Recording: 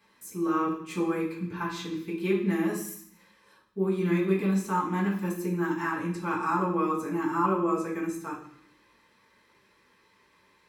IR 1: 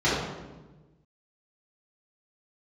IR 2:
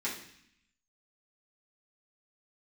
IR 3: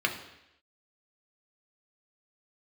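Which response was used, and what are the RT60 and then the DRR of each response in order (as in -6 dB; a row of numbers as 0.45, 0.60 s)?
2; 1.2, 0.65, 0.85 s; -11.0, -8.5, 1.5 dB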